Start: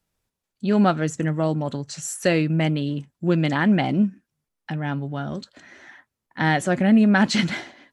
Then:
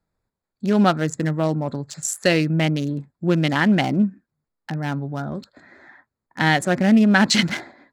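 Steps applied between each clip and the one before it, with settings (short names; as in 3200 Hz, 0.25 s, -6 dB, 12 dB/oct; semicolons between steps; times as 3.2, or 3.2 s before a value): Wiener smoothing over 15 samples; high shelf 2300 Hz +9 dB; gain +1 dB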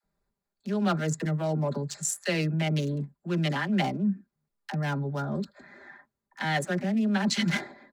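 comb 5 ms, depth 54%; reverse; compressor 10:1, threshold -20 dBFS, peak gain reduction 12.5 dB; reverse; dispersion lows, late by 41 ms, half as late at 450 Hz; gain -3 dB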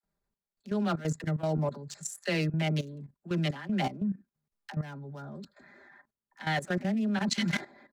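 level quantiser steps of 14 dB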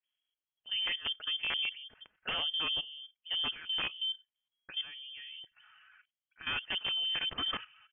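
wrapped overs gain 20.5 dB; vibrato 11 Hz 34 cents; inverted band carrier 3300 Hz; gain -5 dB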